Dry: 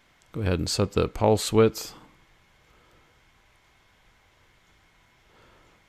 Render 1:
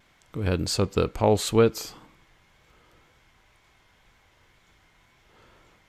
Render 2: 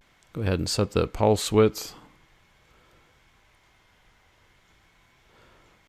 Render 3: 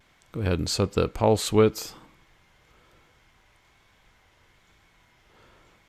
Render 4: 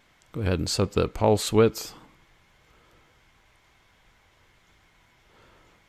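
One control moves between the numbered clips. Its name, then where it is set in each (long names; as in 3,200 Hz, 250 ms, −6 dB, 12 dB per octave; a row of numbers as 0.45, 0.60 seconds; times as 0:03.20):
pitch vibrato, speed: 2, 0.43, 1.1, 8.1 Hertz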